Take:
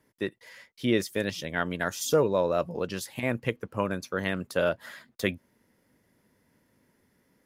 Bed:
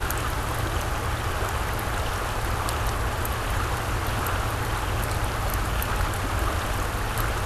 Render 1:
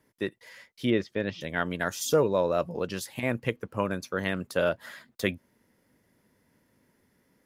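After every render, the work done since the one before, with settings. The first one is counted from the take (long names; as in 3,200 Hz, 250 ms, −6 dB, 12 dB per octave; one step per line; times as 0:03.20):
0:00.90–0:01.41: high-frequency loss of the air 230 metres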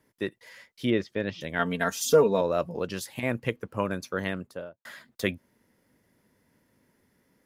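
0:01.59–0:02.41: comb filter 4.4 ms, depth 80%
0:04.15–0:04.85: fade out and dull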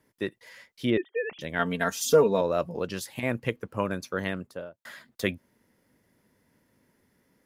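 0:00.97–0:01.39: three sine waves on the formant tracks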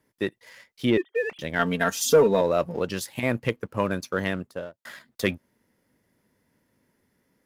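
leveller curve on the samples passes 1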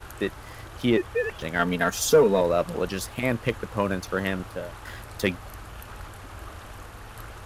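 mix in bed −15 dB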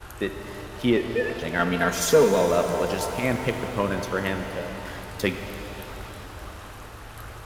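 reverb with rising layers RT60 3.8 s, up +7 semitones, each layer −8 dB, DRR 6 dB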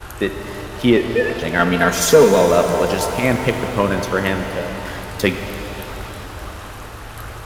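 level +7.5 dB
brickwall limiter −1 dBFS, peak gain reduction 1 dB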